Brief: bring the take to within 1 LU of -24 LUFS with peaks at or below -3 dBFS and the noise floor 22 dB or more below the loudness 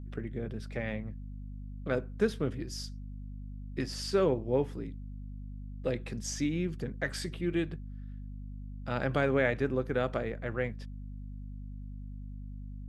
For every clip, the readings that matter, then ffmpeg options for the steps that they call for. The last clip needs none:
hum 50 Hz; highest harmonic 250 Hz; hum level -39 dBFS; loudness -33.5 LUFS; peak level -14.5 dBFS; loudness target -24.0 LUFS
-> -af "bandreject=f=50:t=h:w=4,bandreject=f=100:t=h:w=4,bandreject=f=150:t=h:w=4,bandreject=f=200:t=h:w=4,bandreject=f=250:t=h:w=4"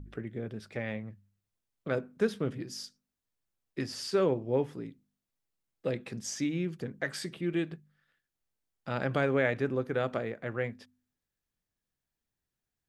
hum not found; loudness -33.5 LUFS; peak level -14.5 dBFS; loudness target -24.0 LUFS
-> -af "volume=2.99"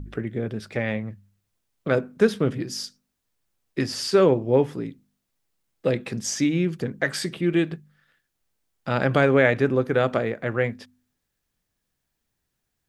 loudness -24.0 LUFS; peak level -5.0 dBFS; noise floor -79 dBFS

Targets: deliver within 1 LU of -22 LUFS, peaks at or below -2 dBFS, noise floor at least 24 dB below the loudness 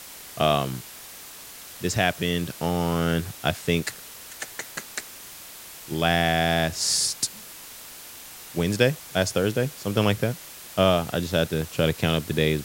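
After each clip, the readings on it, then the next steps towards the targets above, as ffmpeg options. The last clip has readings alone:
noise floor -43 dBFS; noise floor target -49 dBFS; loudness -25.0 LUFS; peak level -5.5 dBFS; loudness target -22.0 LUFS
-> -af "afftdn=nr=6:nf=-43"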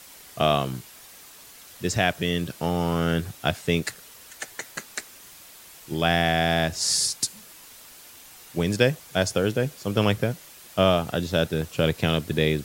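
noise floor -48 dBFS; noise floor target -49 dBFS
-> -af "afftdn=nr=6:nf=-48"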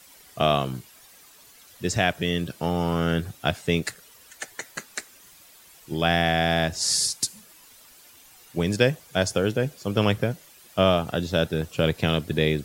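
noise floor -52 dBFS; loudness -24.5 LUFS; peak level -5.5 dBFS; loudness target -22.0 LUFS
-> -af "volume=1.33"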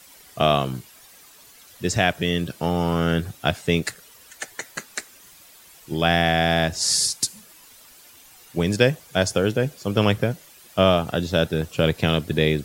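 loudness -22.0 LUFS; peak level -3.0 dBFS; noise floor -50 dBFS

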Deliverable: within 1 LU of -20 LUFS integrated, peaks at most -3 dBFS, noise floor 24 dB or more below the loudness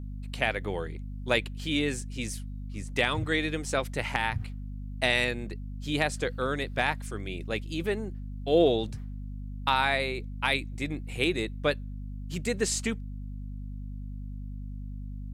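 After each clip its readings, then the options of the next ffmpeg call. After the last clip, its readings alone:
hum 50 Hz; highest harmonic 250 Hz; hum level -35 dBFS; loudness -29.5 LUFS; peak level -10.5 dBFS; loudness target -20.0 LUFS
-> -af "bandreject=f=50:t=h:w=6,bandreject=f=100:t=h:w=6,bandreject=f=150:t=h:w=6,bandreject=f=200:t=h:w=6,bandreject=f=250:t=h:w=6"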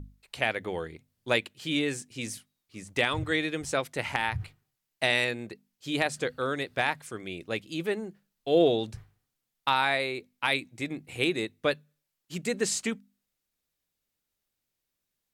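hum not found; loudness -29.5 LUFS; peak level -11.0 dBFS; loudness target -20.0 LUFS
-> -af "volume=2.99,alimiter=limit=0.708:level=0:latency=1"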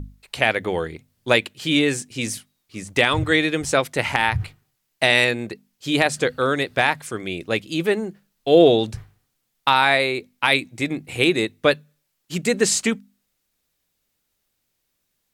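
loudness -20.5 LUFS; peak level -3.0 dBFS; noise floor -74 dBFS

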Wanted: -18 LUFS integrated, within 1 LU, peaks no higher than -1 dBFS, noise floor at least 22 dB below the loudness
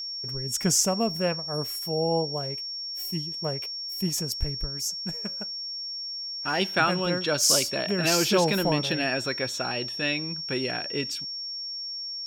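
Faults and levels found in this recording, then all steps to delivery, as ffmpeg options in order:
steady tone 5.5 kHz; tone level -32 dBFS; loudness -26.5 LUFS; peak level -7.5 dBFS; loudness target -18.0 LUFS
-> -af "bandreject=f=5500:w=30"
-af "volume=2.66,alimiter=limit=0.891:level=0:latency=1"

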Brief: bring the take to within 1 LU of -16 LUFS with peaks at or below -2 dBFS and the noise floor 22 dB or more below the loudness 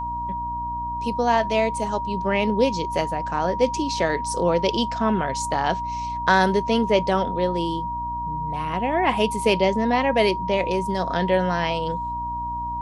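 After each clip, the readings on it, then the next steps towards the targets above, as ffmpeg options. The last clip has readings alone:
hum 60 Hz; highest harmonic 300 Hz; hum level -34 dBFS; steady tone 950 Hz; tone level -26 dBFS; loudness -23.0 LUFS; peak level -4.0 dBFS; loudness target -16.0 LUFS
-> -af "bandreject=f=60:t=h:w=4,bandreject=f=120:t=h:w=4,bandreject=f=180:t=h:w=4,bandreject=f=240:t=h:w=4,bandreject=f=300:t=h:w=4"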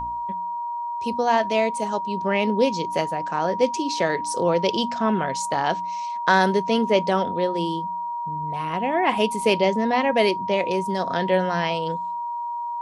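hum not found; steady tone 950 Hz; tone level -26 dBFS
-> -af "bandreject=f=950:w=30"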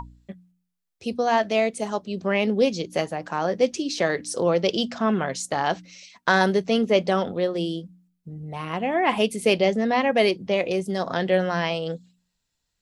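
steady tone not found; loudness -23.5 LUFS; peak level -4.5 dBFS; loudness target -16.0 LUFS
-> -af "volume=2.37,alimiter=limit=0.794:level=0:latency=1"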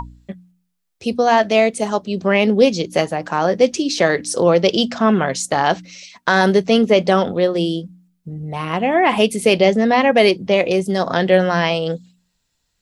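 loudness -16.5 LUFS; peak level -2.0 dBFS; noise floor -71 dBFS

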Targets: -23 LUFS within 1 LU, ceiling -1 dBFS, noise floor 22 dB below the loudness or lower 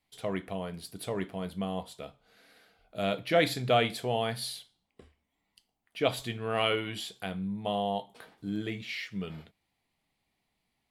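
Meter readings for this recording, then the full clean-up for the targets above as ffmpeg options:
loudness -32.0 LUFS; peak level -11.5 dBFS; loudness target -23.0 LUFS
-> -af "volume=2.82"

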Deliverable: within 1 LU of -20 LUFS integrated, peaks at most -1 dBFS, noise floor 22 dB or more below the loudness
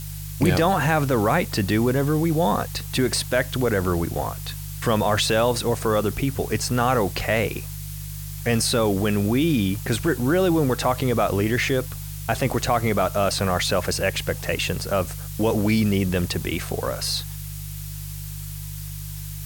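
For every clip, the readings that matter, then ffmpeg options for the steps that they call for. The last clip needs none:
hum 50 Hz; highest harmonic 150 Hz; hum level -32 dBFS; noise floor -33 dBFS; noise floor target -45 dBFS; loudness -22.5 LUFS; peak level -7.0 dBFS; loudness target -20.0 LUFS
-> -af "bandreject=f=50:t=h:w=4,bandreject=f=100:t=h:w=4,bandreject=f=150:t=h:w=4"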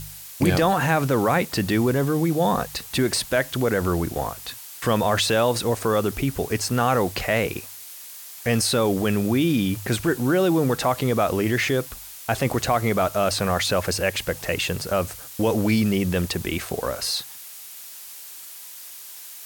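hum not found; noise floor -40 dBFS; noise floor target -45 dBFS
-> -af "afftdn=nr=6:nf=-40"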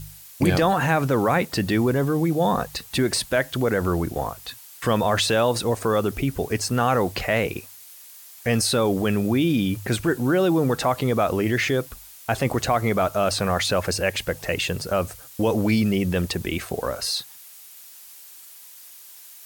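noise floor -45 dBFS; loudness -23.0 LUFS; peak level -7.5 dBFS; loudness target -20.0 LUFS
-> -af "volume=1.41"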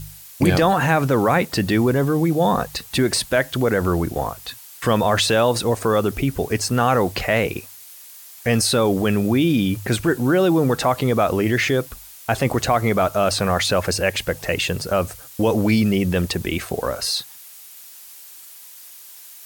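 loudness -20.0 LUFS; peak level -4.5 dBFS; noise floor -42 dBFS

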